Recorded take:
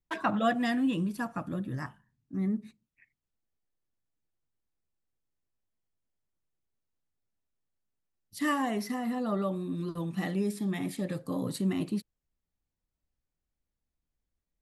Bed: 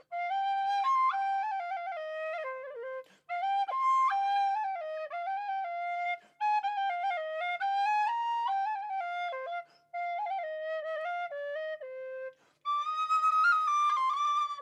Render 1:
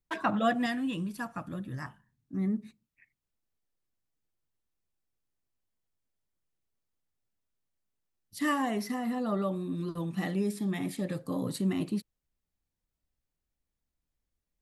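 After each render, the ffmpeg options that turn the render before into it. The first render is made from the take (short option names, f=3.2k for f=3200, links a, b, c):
-filter_complex "[0:a]asettb=1/sr,asplit=3[a][b][c];[a]atrim=end=0.664[d];[b]atrim=start=0.66:end=1.86,asetpts=PTS-STARTPTS,afade=t=in:d=0.004:c=qsin,afade=t=out:st=1.196:d=0.004:c=qsin,equalizer=f=340:t=o:w=2.6:g=-5[e];[c]atrim=start=1.856[f];[d][e]acrossfade=d=0.004:c1=hsin:c2=qsin[g];[g][f]acrossfade=d=0.004:c1=qsin:c2=hsin"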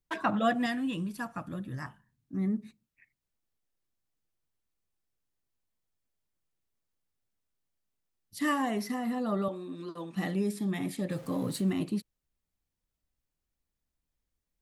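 -filter_complex "[0:a]asettb=1/sr,asplit=3[a][b][c];[a]atrim=end=9.484[d];[b]atrim=start=9.48:end=10.16,asetpts=PTS-STARTPTS,afade=t=in:d=0.004:c=qsin,afade=t=out:st=0.676:d=0.004:c=qsin,highpass=330,lowpass=7.5k[e];[c]atrim=start=10.156[f];[d][e]acrossfade=d=0.004:c1=hsin:c2=qsin[g];[g][f]acrossfade=d=0.004:c1=qsin:c2=hsin,asettb=1/sr,asplit=3[h][i][j];[h]atrim=end=11.114[k];[i]atrim=start=11.11:end=11.71,asetpts=PTS-STARTPTS,afade=t=in:d=0.004:c=qsin,afade=t=out:st=0.596:d=0.004:c=qsin,aeval=exprs='val(0)+0.5*0.00501*sgn(val(0))':c=same[l];[j]atrim=start=11.706[m];[k][l]acrossfade=d=0.004:c1=hsin:c2=qsin[n];[n][m]acrossfade=d=0.004:c1=qsin:c2=hsin"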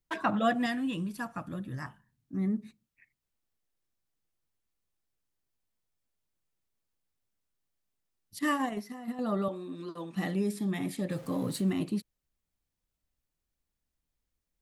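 -filter_complex "[0:a]asettb=1/sr,asplit=3[a][b][c];[a]atrim=end=8.394[d];[b]atrim=start=8.39:end=9.19,asetpts=PTS-STARTPTS,afade=t=in:d=0.004:c=qsin,afade=t=out:st=0.796:d=0.004:c=qsin,agate=range=-10dB:threshold=-31dB:ratio=16:release=100:detection=peak[e];[c]atrim=start=9.186[f];[d][e]acrossfade=d=0.004:c1=hsin:c2=qsin[g];[g][f]acrossfade=d=0.004:c1=qsin:c2=hsin"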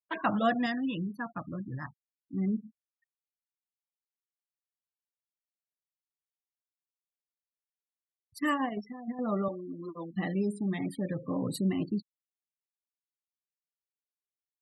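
-af "afftfilt=real='re*gte(hypot(re,im),0.0112)':imag='im*gte(hypot(re,im),0.0112)':win_size=1024:overlap=0.75"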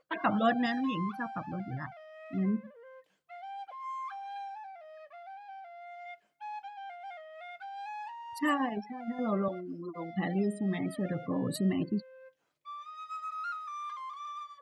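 -filter_complex "[1:a]volume=-12.5dB[a];[0:a][a]amix=inputs=2:normalize=0"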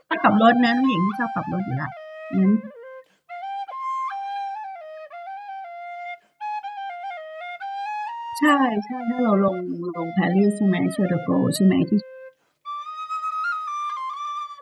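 -af "volume=12dB"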